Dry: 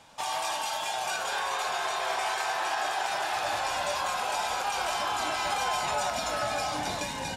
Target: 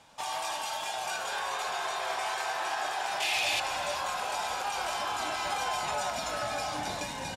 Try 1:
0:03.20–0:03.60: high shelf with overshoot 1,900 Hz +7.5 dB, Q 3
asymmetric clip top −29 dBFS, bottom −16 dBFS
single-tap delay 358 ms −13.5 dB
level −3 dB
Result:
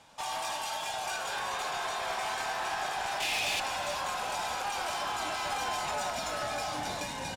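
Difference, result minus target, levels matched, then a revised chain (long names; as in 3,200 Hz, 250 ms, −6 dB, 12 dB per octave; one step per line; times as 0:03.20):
asymmetric clip: distortion +22 dB
0:03.20–0:03.60: high shelf with overshoot 1,900 Hz +7.5 dB, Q 3
asymmetric clip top −17.5 dBFS, bottom −16 dBFS
single-tap delay 358 ms −13.5 dB
level −3 dB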